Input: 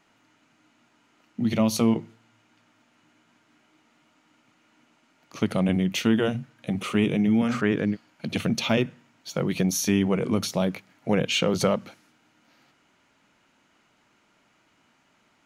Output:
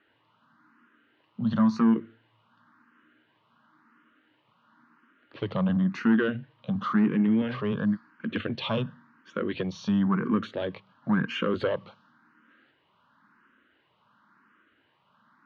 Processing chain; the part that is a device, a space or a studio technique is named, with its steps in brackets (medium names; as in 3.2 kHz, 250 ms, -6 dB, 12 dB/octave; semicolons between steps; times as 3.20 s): barber-pole phaser into a guitar amplifier (barber-pole phaser +0.95 Hz; saturation -17.5 dBFS, distortion -18 dB; cabinet simulation 75–3600 Hz, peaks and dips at 220 Hz +4 dB, 710 Hz -8 dB, 1.1 kHz +10 dB, 1.6 kHz +9 dB, 2.3 kHz -8 dB)